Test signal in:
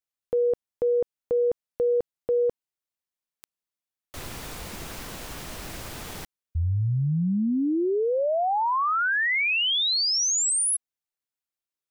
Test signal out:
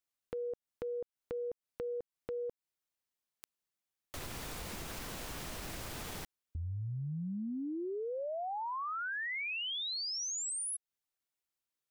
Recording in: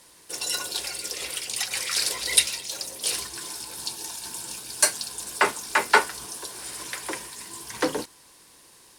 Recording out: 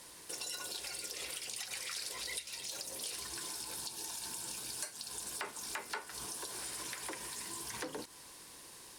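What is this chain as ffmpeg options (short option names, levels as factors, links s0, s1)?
-af "acompressor=threshold=0.0126:ratio=6:attack=4:release=139:knee=6:detection=rms"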